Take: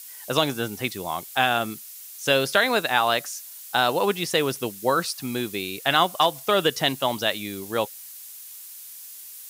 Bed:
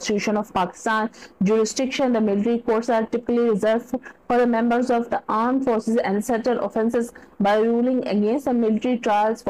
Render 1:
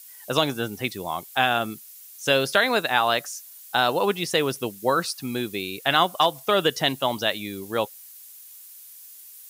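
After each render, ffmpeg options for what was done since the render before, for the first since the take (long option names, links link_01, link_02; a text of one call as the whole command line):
ffmpeg -i in.wav -af "afftdn=noise_reduction=6:noise_floor=-42" out.wav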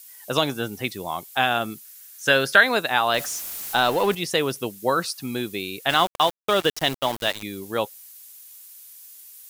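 ffmpeg -i in.wav -filter_complex "[0:a]asettb=1/sr,asplit=3[link_01][link_02][link_03];[link_01]atrim=end=1.844[link_04];[link_02]atrim=start=1.84:end=2.63,asetpts=PTS-STARTPTS,afade=type=in:duration=0.004:curve=qsin,afade=type=out:start_time=0.786:duration=0.004:curve=qsin,equalizer=frequency=1600:width=3:gain=9.5[link_05];[link_03]atrim=start=2.626[link_06];[link_04][link_05]acrossfade=duration=0.004:curve1=hsin:curve2=qsin[link_07];[link_07][link_06]acrossfade=duration=0.004:curve1=qsin:curve2=hsin,asettb=1/sr,asplit=3[link_08][link_09][link_10];[link_08]atrim=end=3.144[link_11];[link_09]atrim=start=3.14:end=4.15,asetpts=PTS-STARTPTS,afade=type=in:duration=0.004:curve=qsin,afade=type=out:start_time=1.006:duration=0.004:curve=qsin,aeval=exprs='val(0)+0.5*0.0335*sgn(val(0))':channel_layout=same[link_12];[link_10]atrim=start=4.146[link_13];[link_11][link_12]acrossfade=duration=0.004:curve1=hsin:curve2=qsin[link_14];[link_14][link_13]acrossfade=duration=0.004:curve1=qsin:curve2=hsin,asettb=1/sr,asplit=3[link_15][link_16][link_17];[link_15]atrim=end=5.894[link_18];[link_16]atrim=start=5.89:end=7.43,asetpts=PTS-STARTPTS,afade=type=in:duration=0.004:curve=qsin,afade=type=out:start_time=1.536:duration=0.004:curve=qsin,aeval=exprs='val(0)*gte(abs(val(0)),0.0398)':channel_layout=same[link_19];[link_17]atrim=start=7.426[link_20];[link_18][link_19]acrossfade=duration=0.004:curve1=hsin:curve2=qsin[link_21];[link_21][link_20]acrossfade=duration=0.004:curve1=qsin:curve2=hsin" out.wav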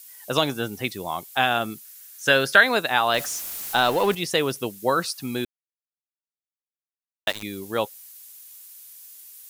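ffmpeg -i in.wav -filter_complex "[0:a]asplit=3[link_01][link_02][link_03];[link_01]atrim=end=5.45,asetpts=PTS-STARTPTS,afade=type=out:start_time=5.446:duration=0.004:curve=hsin[link_04];[link_02]atrim=start=5.45:end=7.27,asetpts=PTS-STARTPTS,volume=0[link_05];[link_03]atrim=start=7.27,asetpts=PTS-STARTPTS,afade=type=in:duration=0.004:curve=hsin[link_06];[link_04][link_05][link_06]concat=n=3:v=0:a=1" out.wav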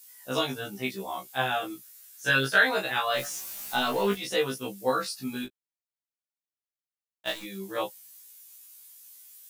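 ffmpeg -i in.wav -af "flanger=delay=19.5:depth=2.6:speed=0.22,afftfilt=real='re*1.73*eq(mod(b,3),0)':imag='im*1.73*eq(mod(b,3),0)':win_size=2048:overlap=0.75" out.wav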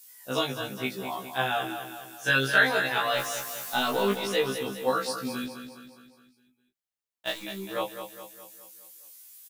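ffmpeg -i in.wav -af "aecho=1:1:207|414|621|828|1035|1242:0.355|0.181|0.0923|0.0471|0.024|0.0122" out.wav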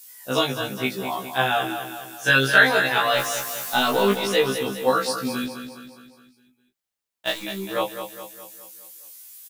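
ffmpeg -i in.wav -af "volume=6dB" out.wav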